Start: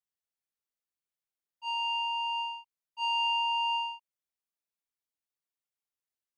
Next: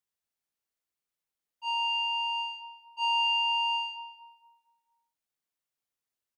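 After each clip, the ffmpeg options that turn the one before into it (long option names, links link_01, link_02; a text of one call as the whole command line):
ffmpeg -i in.wav -filter_complex "[0:a]asplit=2[link_01][link_02];[link_02]adelay=231,lowpass=frequency=1300:poles=1,volume=-6.5dB,asplit=2[link_03][link_04];[link_04]adelay=231,lowpass=frequency=1300:poles=1,volume=0.43,asplit=2[link_05][link_06];[link_06]adelay=231,lowpass=frequency=1300:poles=1,volume=0.43,asplit=2[link_07][link_08];[link_08]adelay=231,lowpass=frequency=1300:poles=1,volume=0.43,asplit=2[link_09][link_10];[link_10]adelay=231,lowpass=frequency=1300:poles=1,volume=0.43[link_11];[link_01][link_03][link_05][link_07][link_09][link_11]amix=inputs=6:normalize=0,volume=2.5dB" out.wav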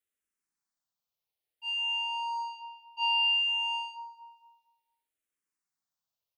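ffmpeg -i in.wav -filter_complex "[0:a]asplit=2[link_01][link_02];[link_02]afreqshift=-0.59[link_03];[link_01][link_03]amix=inputs=2:normalize=1,volume=2dB" out.wav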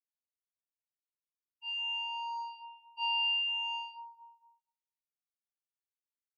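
ffmpeg -i in.wav -af "afftdn=noise_reduction=22:noise_floor=-48,volume=-4.5dB" out.wav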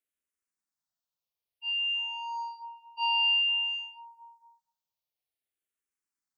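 ffmpeg -i in.wav -filter_complex "[0:a]asplit=2[link_01][link_02];[link_02]afreqshift=-0.54[link_03];[link_01][link_03]amix=inputs=2:normalize=1,volume=6.5dB" out.wav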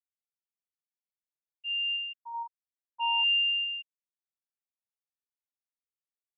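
ffmpeg -i in.wav -af "afftfilt=real='re*gte(hypot(re,im),0.178)':imag='im*gte(hypot(re,im),0.178)':win_size=1024:overlap=0.75" out.wav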